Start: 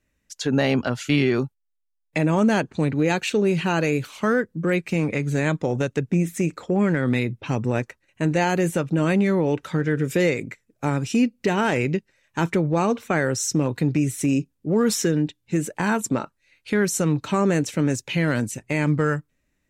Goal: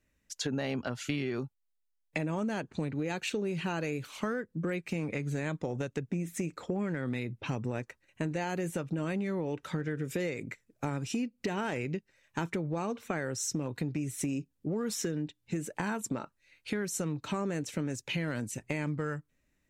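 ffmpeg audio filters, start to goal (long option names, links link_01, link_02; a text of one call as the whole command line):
ffmpeg -i in.wav -af "acompressor=threshold=-28dB:ratio=5,volume=-3dB" out.wav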